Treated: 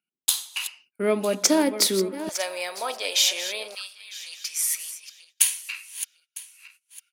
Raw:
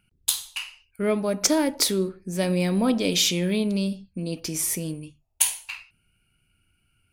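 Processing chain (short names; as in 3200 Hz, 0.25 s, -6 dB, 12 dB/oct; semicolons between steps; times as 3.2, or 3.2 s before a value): regenerating reverse delay 0.477 s, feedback 46%, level -12 dB; HPF 220 Hz 24 dB/oct, from 2.29 s 620 Hz, from 3.75 s 1300 Hz; gate -55 dBFS, range -21 dB; gain +1.5 dB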